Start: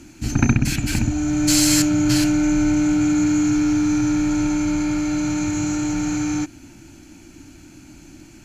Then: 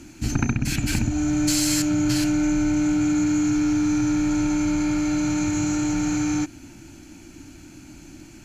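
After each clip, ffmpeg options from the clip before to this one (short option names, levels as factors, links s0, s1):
-af "acompressor=threshold=0.126:ratio=6"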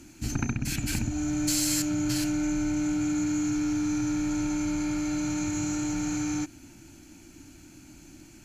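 -af "highshelf=f=7600:g=7,volume=0.473"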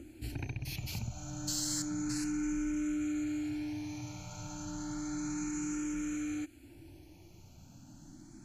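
-filter_complex "[0:a]acrossover=split=840[s0][s1];[s0]acompressor=mode=upward:threshold=0.02:ratio=2.5[s2];[s2][s1]amix=inputs=2:normalize=0,asplit=2[s3][s4];[s4]afreqshift=0.31[s5];[s3][s5]amix=inputs=2:normalize=1,volume=0.501"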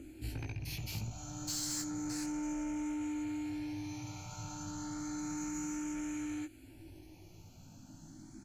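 -filter_complex "[0:a]asoftclip=type=tanh:threshold=0.0251,asplit=2[s0][s1];[s1]adelay=19,volume=0.631[s2];[s0][s2]amix=inputs=2:normalize=0,volume=0.891"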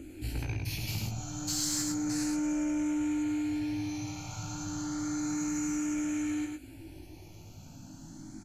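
-filter_complex "[0:a]asplit=2[s0][s1];[s1]aecho=0:1:104:0.668[s2];[s0][s2]amix=inputs=2:normalize=0,aresample=32000,aresample=44100,volume=1.68"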